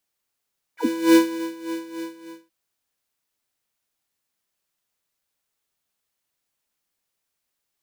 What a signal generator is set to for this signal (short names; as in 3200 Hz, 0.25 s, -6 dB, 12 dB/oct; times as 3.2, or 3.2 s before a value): synth patch with tremolo E4, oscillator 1 square, oscillator 2 saw, interval +7 st, oscillator 2 level -1 dB, sub -24 dB, noise -12 dB, filter highpass, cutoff 210 Hz, Q 10, filter envelope 3.5 oct, filter decay 0.08 s, filter sustain 5%, attack 0.397 s, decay 0.22 s, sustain -16 dB, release 0.63 s, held 1.10 s, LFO 3.4 Hz, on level 13 dB